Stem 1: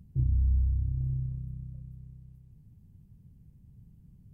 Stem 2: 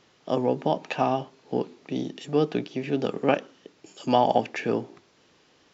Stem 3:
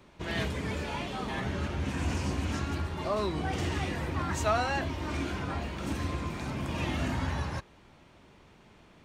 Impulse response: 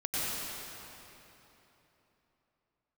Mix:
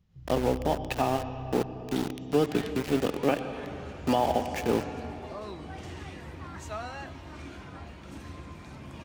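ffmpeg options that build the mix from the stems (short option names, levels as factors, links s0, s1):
-filter_complex "[0:a]alimiter=level_in=1.33:limit=0.0631:level=0:latency=1,volume=0.75,volume=0.473,asplit=2[s0][s1];[s1]volume=0.473[s2];[1:a]highpass=42,volume=1,asplit=3[s3][s4][s5];[s4]volume=0.0944[s6];[2:a]adelay=2250,volume=0.299,asplit=2[s7][s8];[s8]volume=0.0944[s9];[s5]apad=whole_len=191158[s10];[s0][s10]sidechaincompress=threshold=0.0316:ratio=8:attack=16:release=166[s11];[s11][s3]amix=inputs=2:normalize=0,aeval=exprs='val(0)*gte(abs(val(0)),0.0355)':c=same,alimiter=limit=0.2:level=0:latency=1:release=450,volume=1[s12];[3:a]atrim=start_sample=2205[s13];[s2][s6][s9]amix=inputs=3:normalize=0[s14];[s14][s13]afir=irnorm=-1:irlink=0[s15];[s7][s12][s15]amix=inputs=3:normalize=0"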